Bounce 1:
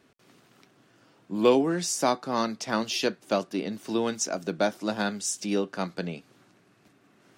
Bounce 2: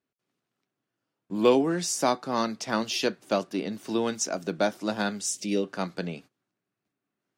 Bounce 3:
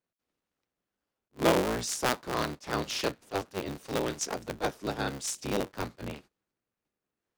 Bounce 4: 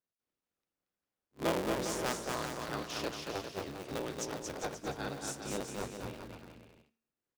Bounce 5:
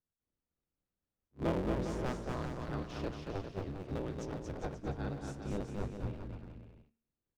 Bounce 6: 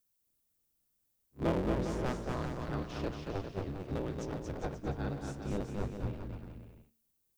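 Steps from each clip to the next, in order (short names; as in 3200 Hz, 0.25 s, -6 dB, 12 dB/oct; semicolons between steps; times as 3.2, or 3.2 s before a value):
spectral gain 5.29–5.64, 650–1800 Hz -10 dB; gate -47 dBFS, range -24 dB
cycle switcher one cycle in 3, inverted; attack slew limiter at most 430 dB/s; gain -4 dB
de-hum 228.6 Hz, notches 27; on a send: bouncing-ball echo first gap 0.23 s, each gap 0.75×, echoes 5; on the sum: gain -8 dB
RIAA curve playback; gain -5 dB
added noise violet -80 dBFS; gain +2 dB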